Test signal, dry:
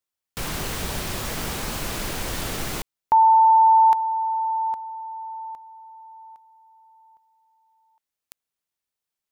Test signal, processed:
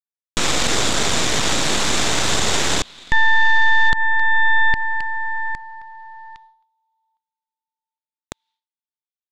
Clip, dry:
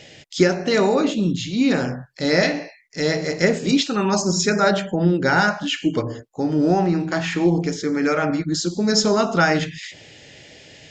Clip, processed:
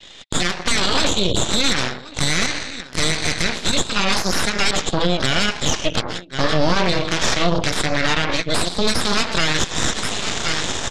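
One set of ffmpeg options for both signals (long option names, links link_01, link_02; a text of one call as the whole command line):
ffmpeg -i in.wav -af "equalizer=frequency=125:width_type=o:width=1:gain=-7,equalizer=frequency=500:width_type=o:width=1:gain=-6,equalizer=frequency=1000:width_type=o:width=1:gain=3,equalizer=frequency=2000:width_type=o:width=1:gain=6,equalizer=frequency=4000:width_type=o:width=1:gain=8,aecho=1:1:1076:0.1,alimiter=limit=-11dB:level=0:latency=1:release=376,highpass=94,dynaudnorm=framelen=130:gausssize=5:maxgain=13dB,equalizer=frequency=3600:width_type=o:width=0.43:gain=12.5,agate=range=-33dB:threshold=-31dB:ratio=3:release=341:detection=rms,acompressor=threshold=-9dB:ratio=20:attack=0.93:release=131:knee=6:detection=rms,aeval=exprs='0.841*(cos(1*acos(clip(val(0)/0.841,-1,1)))-cos(1*PI/2))+0.299*(cos(3*acos(clip(val(0)/0.841,-1,1)))-cos(3*PI/2))+0.0944*(cos(5*acos(clip(val(0)/0.841,-1,1)))-cos(5*PI/2))+0.335*(cos(6*acos(clip(val(0)/0.841,-1,1)))-cos(6*PI/2))':channel_layout=same,lowpass=6600,volume=-4dB" out.wav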